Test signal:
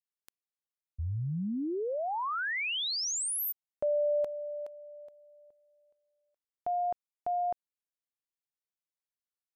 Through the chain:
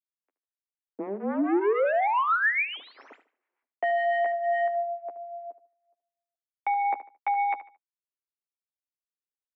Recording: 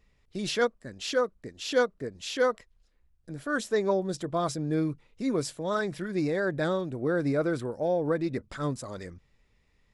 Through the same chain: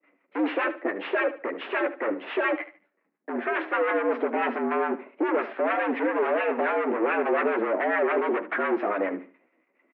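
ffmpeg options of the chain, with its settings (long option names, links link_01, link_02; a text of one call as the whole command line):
ffmpeg -i in.wav -filter_complex "[0:a]agate=range=-33dB:threshold=-57dB:ratio=3:release=148:detection=peak,aresample=16000,aeval=exprs='0.237*sin(PI/2*5.01*val(0)/0.237)':channel_layout=same,aresample=44100,flanger=delay=10:depth=3.6:regen=-13:speed=0.37:shape=triangular,asoftclip=type=hard:threshold=-28dB,acrossover=split=720[link_01][link_02];[link_01]aeval=exprs='val(0)*(1-0.7/2+0.7/2*cos(2*PI*7.1*n/s))':channel_layout=same[link_03];[link_02]aeval=exprs='val(0)*(1-0.7/2-0.7/2*cos(2*PI*7.1*n/s))':channel_layout=same[link_04];[link_03][link_04]amix=inputs=2:normalize=0,aecho=1:1:74|148|222:0.2|0.0559|0.0156,highpass=frequency=170:width_type=q:width=0.5412,highpass=frequency=170:width_type=q:width=1.307,lowpass=frequency=2200:width_type=q:width=0.5176,lowpass=frequency=2200:width_type=q:width=0.7071,lowpass=frequency=2200:width_type=q:width=1.932,afreqshift=100,volume=8.5dB" out.wav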